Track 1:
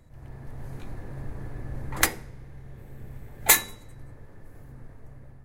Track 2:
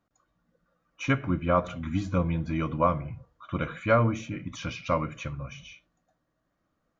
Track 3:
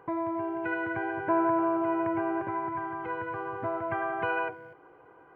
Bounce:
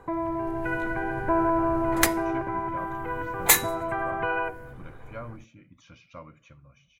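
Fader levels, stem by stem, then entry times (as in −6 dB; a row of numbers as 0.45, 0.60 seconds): −0.5, −17.5, +2.0 decibels; 0.00, 1.25, 0.00 seconds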